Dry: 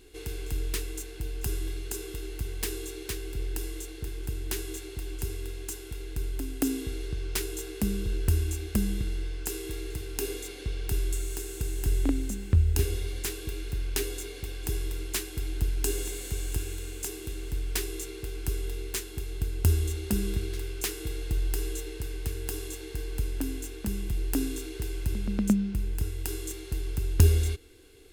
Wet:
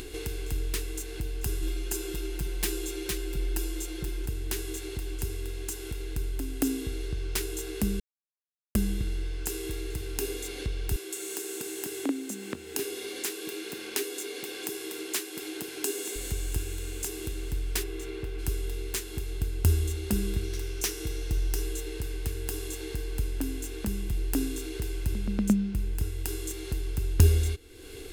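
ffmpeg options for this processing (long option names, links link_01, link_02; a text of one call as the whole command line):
ffmpeg -i in.wav -filter_complex "[0:a]asettb=1/sr,asplit=3[link_01][link_02][link_03];[link_01]atrim=end=1.624[link_04];[link_02]atrim=start=1.62:end=4.26,asetpts=PTS-STARTPTS,afade=type=in:duration=0.004:curve=qsin,afade=type=out:start_time=2.636:duration=0.004:curve=qsin,aecho=1:1:5.7:0.93,atrim=end_sample=116424[link_05];[link_03]atrim=start=4.256[link_06];[link_04][link_05]acrossfade=duration=0.004:curve1=hsin:curve2=qsin[link_07];[link_07][link_06]acrossfade=duration=0.004:curve1=qsin:curve2=hsin,asettb=1/sr,asplit=3[link_08][link_09][link_10];[link_08]atrim=end=10.964[link_11];[link_09]atrim=start=10.96:end=16.16,asetpts=PTS-STARTPTS,afade=type=in:duration=0.004:curve=qsin,afade=type=out:start_time=5.196:duration=0.004:curve=qsin,highpass=frequency=230:width=0.5412,highpass=frequency=230:width=1.3066[link_12];[link_10]atrim=start=16.156[link_13];[link_11][link_12]acrossfade=duration=0.004:curve1=hsin:curve2=qsin[link_14];[link_14][link_13]acrossfade=duration=0.004:curve1=qsin:curve2=hsin,asplit=3[link_15][link_16][link_17];[link_15]afade=type=out:start_time=17.82:duration=0.02[link_18];[link_16]bass=frequency=250:gain=-1,treble=frequency=4000:gain=-12,afade=type=in:start_time=17.82:duration=0.02,afade=type=out:start_time=18.38:duration=0.02[link_19];[link_17]afade=type=in:start_time=18.38:duration=0.02[link_20];[link_18][link_19][link_20]amix=inputs=3:normalize=0,asettb=1/sr,asplit=3[link_21][link_22][link_23];[link_21]atrim=end=20.444[link_24];[link_22]atrim=start=20.44:end=21.62,asetpts=PTS-STARTPTS,afade=type=in:duration=0.004:curve=qsin,afade=type=out:start_time=1.176:duration=0.004:curve=qsin,equalizer=frequency=5800:width=6.2:gain=9[link_25];[link_23]atrim=start=21.616[link_26];[link_24][link_25]acrossfade=duration=0.004:curve1=hsin:curve2=qsin[link_27];[link_27][link_26]acrossfade=duration=0.004:curve1=qsin:curve2=hsin,asplit=3[link_28][link_29][link_30];[link_28]atrim=end=8,asetpts=PTS-STARTPTS,afade=type=out:start_time=7.996:duration=0.004:curve=hsin[link_31];[link_29]atrim=start=8:end=8.75,asetpts=PTS-STARTPTS,volume=0[link_32];[link_30]atrim=start=8.75,asetpts=PTS-STARTPTS,afade=type=in:duration=0.004:curve=hsin[link_33];[link_31][link_32][link_33]concat=n=3:v=0:a=1,acompressor=mode=upward:threshold=-29dB:ratio=2.5" out.wav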